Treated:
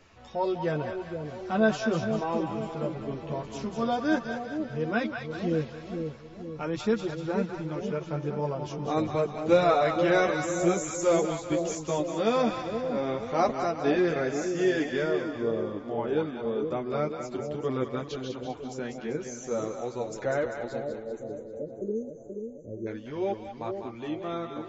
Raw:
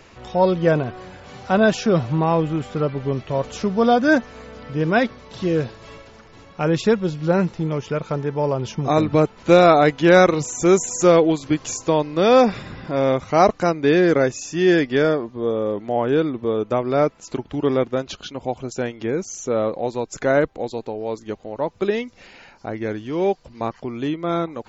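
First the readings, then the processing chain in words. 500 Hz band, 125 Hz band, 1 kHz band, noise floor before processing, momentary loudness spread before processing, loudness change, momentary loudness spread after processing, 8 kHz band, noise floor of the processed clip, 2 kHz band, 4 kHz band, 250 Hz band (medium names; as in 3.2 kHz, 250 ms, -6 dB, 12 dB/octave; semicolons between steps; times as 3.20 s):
-9.0 dB, -10.5 dB, -9.0 dB, -48 dBFS, 14 LU, -9.5 dB, 11 LU, no reading, -44 dBFS, -9.0 dB, -9.5 dB, -9.0 dB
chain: spectral selection erased 20.79–22.87 s, 620–5900 Hz; chorus voices 2, 0.42 Hz, delay 11 ms, depth 2.6 ms; two-band feedback delay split 680 Hz, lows 477 ms, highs 196 ms, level -6 dB; trim -7.5 dB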